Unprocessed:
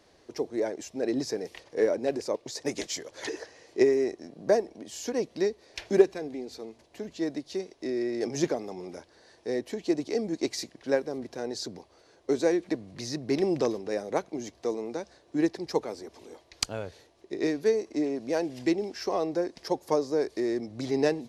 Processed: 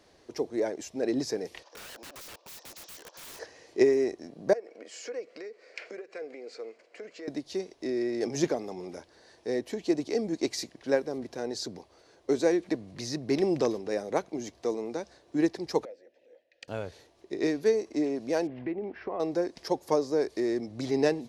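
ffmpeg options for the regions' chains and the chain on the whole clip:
ffmpeg -i in.wav -filter_complex "[0:a]asettb=1/sr,asplit=3[link_01][link_02][link_03];[link_01]atrim=end=1.634[link_04];[link_02]atrim=start=1.63:end=3.39,asetpts=PTS-STARTPTS,afade=type=in:duration=0.004:curve=qsin,afade=type=out:start_time=1.756:duration=0.004:curve=qsin,highpass=frequency=420:width=0.5412,highpass=frequency=420:width=1.3066,equalizer=frequency=420:width_type=q:width=4:gain=-10,equalizer=frequency=1000:width_type=q:width=4:gain=6,equalizer=frequency=2100:width_type=q:width=4:gain=-9,equalizer=frequency=5600:width_type=q:width=4:gain=5,lowpass=frequency=6800:width=0.5412,lowpass=frequency=6800:width=1.3066,acompressor=threshold=-36dB:ratio=5:attack=3.2:release=140:knee=1:detection=peak,aeval=exprs='(mod(106*val(0)+1,2)-1)/106':channel_layout=same[link_05];[link_03]atrim=start=3.386[link_06];[link_04][link_05]acrossfade=duration=0.004:curve1=hsin:curve2=qsin[link_07];[link_07][link_06]acrossfade=duration=0.004:curve1=qsin:curve2=hsin,asettb=1/sr,asplit=3[link_08][link_09][link_10];[link_08]atrim=end=4.534[link_11];[link_09]atrim=start=4.53:end=7.28,asetpts=PTS-STARTPTS,afade=type=in:duration=0.004:curve=qsin,afade=type=out:start_time=2.746:duration=0.004:curve=qsin,acompressor=threshold=-35dB:ratio=12:attack=3.2:release=140:knee=1:detection=peak,highpass=480,equalizer=frequency=490:width_type=q:width=4:gain=10,equalizer=frequency=890:width_type=q:width=4:gain=-8,equalizer=frequency=1400:width_type=q:width=4:gain=7,equalizer=frequency=2200:width_type=q:width=4:gain=8,equalizer=frequency=3600:width_type=q:width=4:gain=-9,equalizer=frequency=6000:width_type=q:width=4:gain=-7,lowpass=frequency=7500:width=0.5412,lowpass=frequency=7500:width=1.3066[link_12];[link_10]atrim=start=7.276[link_13];[link_11][link_12]acrossfade=duration=0.004:curve1=hsin:curve2=qsin[link_14];[link_14][link_13]acrossfade=duration=0.004:curve1=qsin:curve2=hsin,asettb=1/sr,asplit=3[link_15][link_16][link_17];[link_15]atrim=end=15.854[link_18];[link_16]atrim=start=15.85:end=16.68,asetpts=PTS-STARTPTS,afade=type=in:duration=0.004:curve=qsin,afade=type=out:start_time=0.826:duration=0.004:curve=qsin,asplit=3[link_19][link_20][link_21];[link_19]bandpass=frequency=530:width_type=q:width=8,volume=0dB[link_22];[link_20]bandpass=frequency=1840:width_type=q:width=8,volume=-6dB[link_23];[link_21]bandpass=frequency=2480:width_type=q:width=8,volume=-9dB[link_24];[link_22][link_23][link_24]amix=inputs=3:normalize=0,equalizer=frequency=410:width=7.4:gain=-13,bandreject=frequency=50:width_type=h:width=6,bandreject=frequency=100:width_type=h:width=6,bandreject=frequency=150:width_type=h:width=6,bandreject=frequency=200:width_type=h:width=6,bandreject=frequency=250:width_type=h:width=6,bandreject=frequency=300:width_type=h:width=6,bandreject=frequency=350:width_type=h:width=6,bandreject=frequency=400:width_type=h:width=6[link_25];[link_17]atrim=start=16.676[link_26];[link_18][link_25]acrossfade=duration=0.004:curve1=hsin:curve2=qsin[link_27];[link_27][link_26]acrossfade=duration=0.004:curve1=qsin:curve2=hsin,asettb=1/sr,asplit=3[link_28][link_29][link_30];[link_28]atrim=end=18.474[link_31];[link_29]atrim=start=18.47:end=19.2,asetpts=PTS-STARTPTS,afade=type=in:duration=0.004:curve=qsin,afade=type=out:start_time=0.726:duration=0.004:curve=qsin,lowpass=frequency=2400:width=0.5412,lowpass=frequency=2400:width=1.3066,acompressor=threshold=-31dB:ratio=3:attack=3.2:release=140:knee=1:detection=peak[link_32];[link_30]atrim=start=19.196[link_33];[link_31][link_32]acrossfade=duration=0.004:curve1=hsin:curve2=qsin[link_34];[link_34][link_33]acrossfade=duration=0.004:curve1=qsin:curve2=hsin" out.wav

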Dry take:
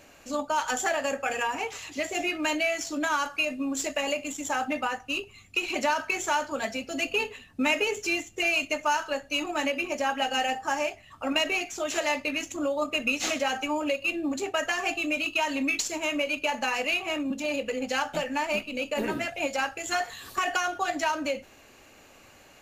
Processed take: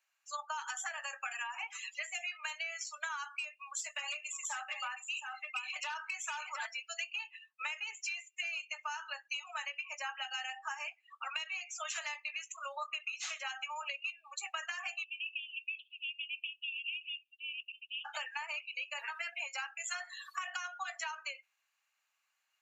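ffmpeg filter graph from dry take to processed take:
ffmpeg -i in.wav -filter_complex "[0:a]asettb=1/sr,asplit=3[link_01][link_02][link_03];[link_01]atrim=end=3.264[link_04];[link_02]atrim=start=3.26:end=6.66,asetpts=PTS-STARTPTS,afade=type=in:duration=0.004:curve=qsin,afade=type=out:start_time=3.396:duration=0.004:curve=qsin,asoftclip=type=hard:threshold=-23dB,aecho=1:1:719:0.473,atrim=end_sample=149940[link_05];[link_03]atrim=start=6.656[link_06];[link_04][link_05]acrossfade=duration=0.004:curve1=hsin:curve2=qsin[link_07];[link_07][link_06]acrossfade=duration=0.004:curve1=qsin:curve2=hsin,asettb=1/sr,asplit=3[link_08][link_09][link_10];[link_08]atrim=end=10.754[link_11];[link_09]atrim=start=10.75:end=11.56,asetpts=PTS-STARTPTS,afade=type=in:duration=0.004:curve=qsin,afade=type=out:start_time=0.806:duration=0.004:curve=qsin,lowshelf=frequency=360:gain=-9,bandreject=frequency=6000:width=18[link_12];[link_10]atrim=start=11.556[link_13];[link_11][link_12]acrossfade=duration=0.004:curve1=hsin:curve2=qsin[link_14];[link_14][link_13]acrossfade=duration=0.004:curve1=qsin:curve2=hsin,asettb=1/sr,asplit=3[link_15][link_16][link_17];[link_15]atrim=end=15.044[link_18];[link_16]atrim=start=15.04:end=18.05,asetpts=PTS-STARTPTS,afade=type=in:duration=0.004:curve=qsin,afade=type=out:start_time=3.006:duration=0.004:curve=qsin,aeval=exprs='(tanh(8.91*val(0)+0.7)-tanh(0.7))/8.91':channel_layout=same,asuperpass=centerf=3000:order=8:qfactor=2.9[link_19];[link_17]atrim=start=18.046[link_20];[link_18][link_19]acrossfade=duration=0.004:curve1=hsin:curve2=qsin[link_21];[link_21][link_20]acrossfade=duration=0.004:curve1=qsin:curve2=hsin,highpass=frequency=1000:width=0.5412,highpass=frequency=1000:width=1.3066,afftdn=noise_reduction=27:noise_floor=-40,acompressor=threshold=-38dB:ratio=12,volume=1.5dB" out.wav

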